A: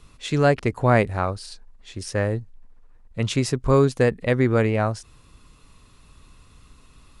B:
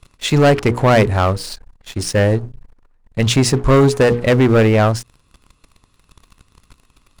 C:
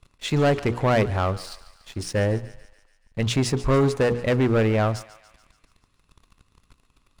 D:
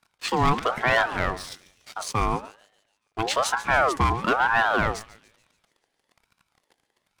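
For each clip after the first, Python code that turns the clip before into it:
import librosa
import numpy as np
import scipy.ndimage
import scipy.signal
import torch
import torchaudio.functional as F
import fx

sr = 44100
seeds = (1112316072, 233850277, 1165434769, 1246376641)

y1 = fx.hum_notches(x, sr, base_hz=60, count=8)
y1 = fx.leveller(y1, sr, passes=3)
y2 = fx.high_shelf(y1, sr, hz=6000.0, db=-4.5)
y2 = fx.echo_thinned(y2, sr, ms=143, feedback_pct=61, hz=790.0, wet_db=-16.0)
y2 = y2 * librosa.db_to_amplitude(-8.0)
y3 = scipy.signal.sosfilt(scipy.signal.butter(2, 170.0, 'highpass', fs=sr, output='sos'), y2)
y3 = fx.leveller(y3, sr, passes=1)
y3 = fx.ring_lfo(y3, sr, carrier_hz=910.0, swing_pct=40, hz=1.1)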